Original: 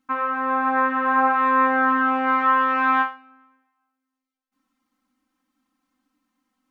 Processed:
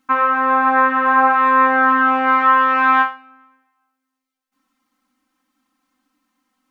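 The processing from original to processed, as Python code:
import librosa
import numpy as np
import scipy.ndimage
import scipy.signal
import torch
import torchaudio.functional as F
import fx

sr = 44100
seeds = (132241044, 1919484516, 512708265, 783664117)

p1 = fx.low_shelf(x, sr, hz=360.0, db=-6.0)
p2 = fx.rider(p1, sr, range_db=10, speed_s=0.5)
y = p1 + (p2 * librosa.db_to_amplitude(1.0))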